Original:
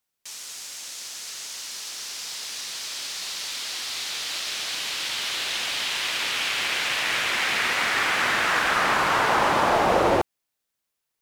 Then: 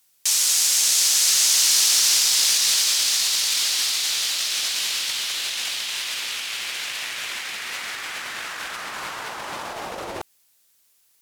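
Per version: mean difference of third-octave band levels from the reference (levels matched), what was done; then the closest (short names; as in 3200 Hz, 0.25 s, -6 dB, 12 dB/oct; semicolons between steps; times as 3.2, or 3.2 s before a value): 8.5 dB: bell 14000 Hz +12 dB 2.7 oct; negative-ratio compressor -26 dBFS, ratio -0.5; gain +3.5 dB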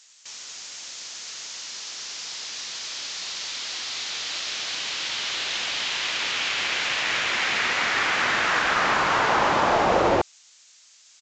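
4.5 dB: added noise violet -40 dBFS; downsampling 16000 Hz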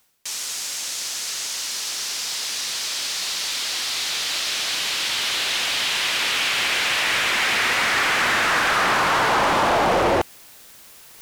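2.5 dB: reverse; upward compressor, threshold -28 dBFS; reverse; soft clip -20.5 dBFS, distortion -12 dB; gain +6 dB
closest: third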